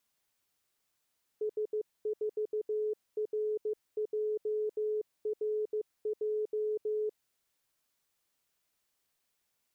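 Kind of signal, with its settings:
Morse code "S4RJRJ" 15 words per minute 427 Hz −29.5 dBFS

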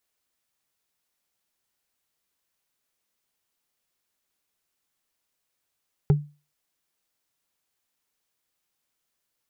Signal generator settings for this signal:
struck wood, lowest mode 147 Hz, decay 0.31 s, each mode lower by 8 dB, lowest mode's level −11.5 dB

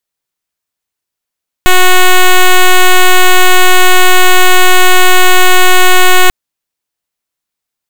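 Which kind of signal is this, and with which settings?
pulse wave 367 Hz, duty 7% −3 dBFS 4.64 s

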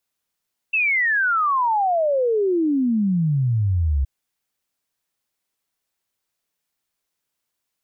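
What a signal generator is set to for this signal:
exponential sine sweep 2,700 Hz → 65 Hz 3.32 s −16.5 dBFS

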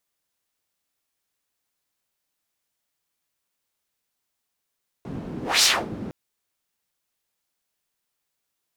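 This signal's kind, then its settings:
pass-by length 1.06 s, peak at 0:00.58, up 0.22 s, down 0.27 s, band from 230 Hz, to 5,400 Hz, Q 1.7, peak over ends 16.5 dB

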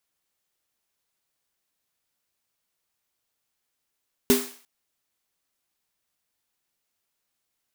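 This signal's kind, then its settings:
synth snare length 0.35 s, tones 250 Hz, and 400 Hz, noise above 560 Hz, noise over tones −5.5 dB, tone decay 0.31 s, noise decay 0.50 s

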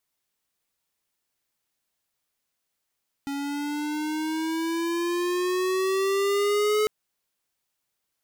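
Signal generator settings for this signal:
pitch glide with a swell square, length 3.60 s, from 278 Hz, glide +7.5 semitones, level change +8.5 dB, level −22 dB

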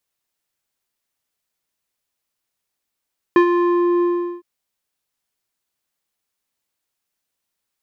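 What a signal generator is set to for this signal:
subtractive voice square F4 12 dB per octave, low-pass 820 Hz, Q 1.3, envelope 1 octave, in 0.52 s, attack 1.9 ms, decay 0.09 s, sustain −7.5 dB, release 0.40 s, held 0.66 s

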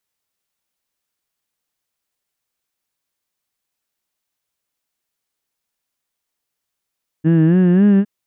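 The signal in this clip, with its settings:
vowel from formants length 0.81 s, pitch 154 Hz, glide +5.5 semitones, vibrato 3.7 Hz, F1 270 Hz, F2 1,700 Hz, F3 2,800 Hz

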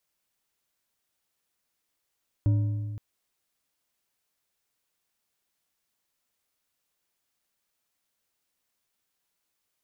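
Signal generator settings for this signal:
struck metal bar, length 0.52 s, lowest mode 106 Hz, decay 1.91 s, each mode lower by 12 dB, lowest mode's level −18 dB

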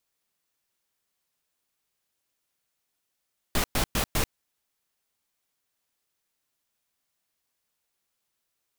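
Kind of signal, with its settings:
noise bursts pink, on 0.09 s, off 0.11 s, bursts 4, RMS −24.5 dBFS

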